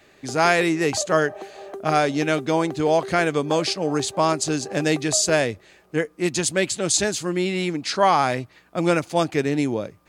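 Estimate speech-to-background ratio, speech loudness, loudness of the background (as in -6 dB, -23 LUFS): 15.0 dB, -22.0 LUFS, -37.0 LUFS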